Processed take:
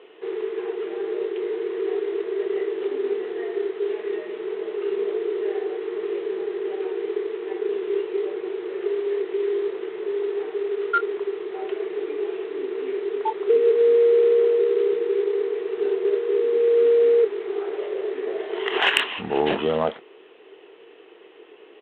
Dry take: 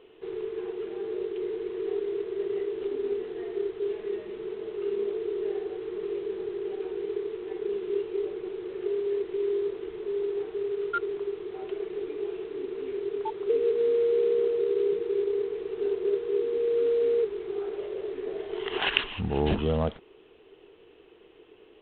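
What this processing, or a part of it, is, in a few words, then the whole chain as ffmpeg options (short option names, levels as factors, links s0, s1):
intercom: -filter_complex "[0:a]highpass=380,lowpass=3500,equalizer=f=1900:t=o:w=0.21:g=4,asoftclip=type=tanh:threshold=0.237,asplit=2[s0][s1];[s1]adelay=26,volume=0.266[s2];[s0][s2]amix=inputs=2:normalize=0,volume=2.66"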